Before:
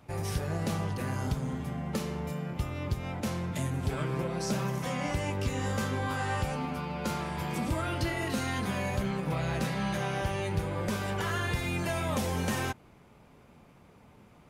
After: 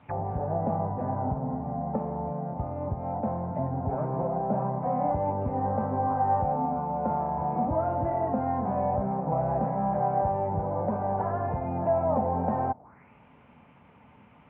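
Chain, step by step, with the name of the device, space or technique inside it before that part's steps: envelope filter bass rig (envelope low-pass 720–3700 Hz down, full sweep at -34 dBFS; speaker cabinet 61–2300 Hz, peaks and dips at 250 Hz +4 dB, 360 Hz -6 dB, 910 Hz +6 dB)

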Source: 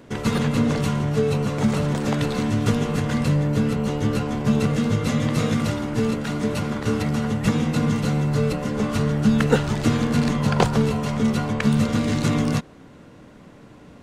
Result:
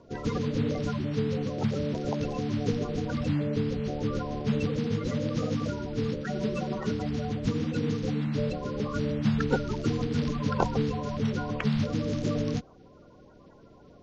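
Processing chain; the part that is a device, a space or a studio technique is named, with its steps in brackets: clip after many re-uploads (LPF 5400 Hz 24 dB/oct; bin magnitudes rounded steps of 30 dB); 6.25–6.91 comb 5.3 ms, depth 84%; gain -7 dB

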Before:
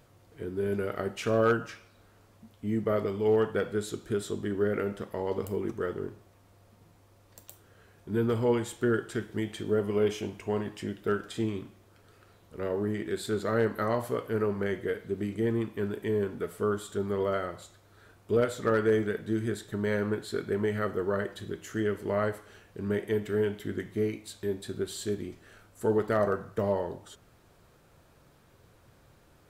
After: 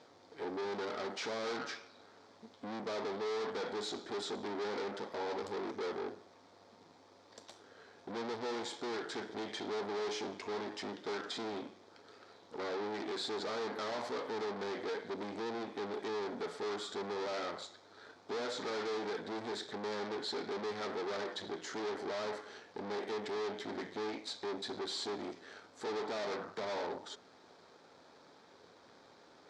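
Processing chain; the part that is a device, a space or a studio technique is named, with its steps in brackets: guitar amplifier (tube stage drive 44 dB, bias 0.8; tone controls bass -15 dB, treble +14 dB; speaker cabinet 98–4500 Hz, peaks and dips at 130 Hz -4 dB, 180 Hz +4 dB, 260 Hz +8 dB, 430 Hz +4 dB, 850 Hz +5 dB, 2800 Hz -8 dB); gain +6.5 dB

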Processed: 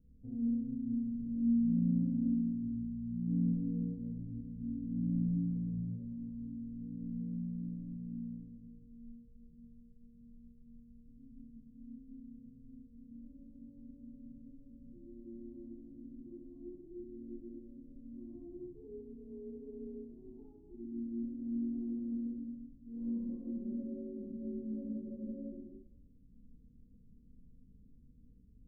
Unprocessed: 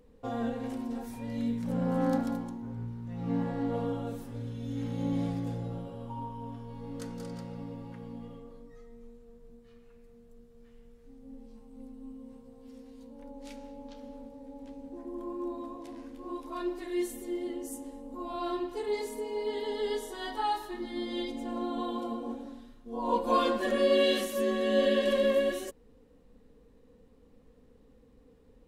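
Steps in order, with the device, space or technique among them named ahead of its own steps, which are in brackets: club heard from the street (limiter -22 dBFS, peak gain reduction 7.5 dB; LPF 230 Hz 24 dB/oct; reverb RT60 0.75 s, pre-delay 22 ms, DRR -2.5 dB); gain -3 dB

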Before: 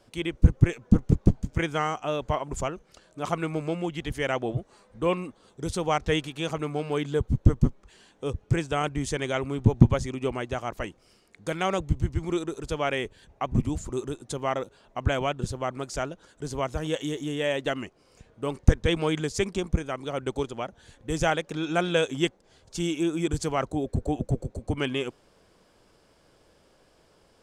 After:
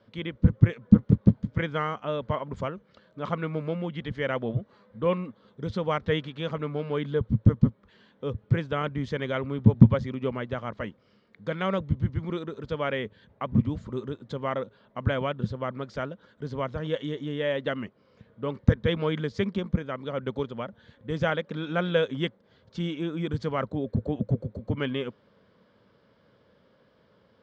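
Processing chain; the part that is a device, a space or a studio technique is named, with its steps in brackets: guitar cabinet (speaker cabinet 97–3700 Hz, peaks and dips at 110 Hz +5 dB, 210 Hz +7 dB, 340 Hz -7 dB, 530 Hz +3 dB, 750 Hz -9 dB, 2600 Hz -8 dB)

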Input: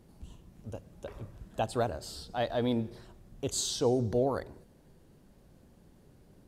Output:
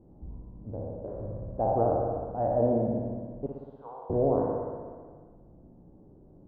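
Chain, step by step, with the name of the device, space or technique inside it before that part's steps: spectral trails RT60 1.53 s; under water (LPF 860 Hz 24 dB/oct; bell 310 Hz +5 dB 0.22 oct); 3.46–4.1 HPF 950 Hz 24 dB/oct; spring tank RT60 1.3 s, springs 59 ms, chirp 30 ms, DRR 3.5 dB

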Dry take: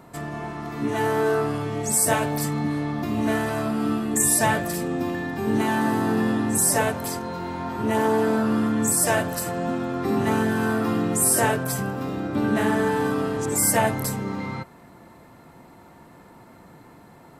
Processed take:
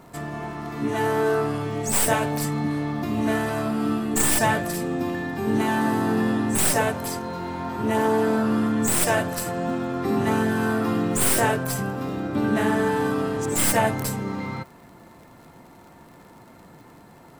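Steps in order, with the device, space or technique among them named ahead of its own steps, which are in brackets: record under a worn stylus (tracing distortion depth 0.058 ms; crackle 77/s -42 dBFS; pink noise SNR 42 dB)

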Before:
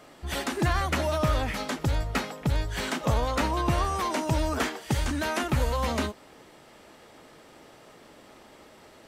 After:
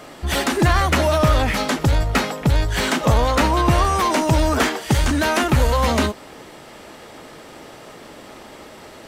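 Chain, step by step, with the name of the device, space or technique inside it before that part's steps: parallel distortion (in parallel at -4.5 dB: hard clip -31.5 dBFS, distortion -5 dB); on the sum: gain +7.5 dB

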